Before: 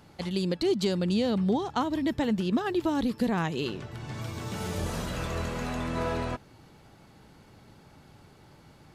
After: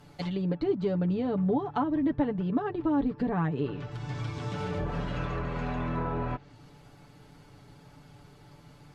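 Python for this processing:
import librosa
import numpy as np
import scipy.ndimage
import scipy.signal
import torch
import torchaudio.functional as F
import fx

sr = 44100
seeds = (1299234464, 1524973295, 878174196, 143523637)

y = fx.env_lowpass_down(x, sr, base_hz=1400.0, full_db=-26.0)
y = fx.low_shelf(y, sr, hz=90.0, db=5.5)
y = y + 0.7 * np.pad(y, (int(6.9 * sr / 1000.0), 0))[:len(y)]
y = y * 10.0 ** (-2.0 / 20.0)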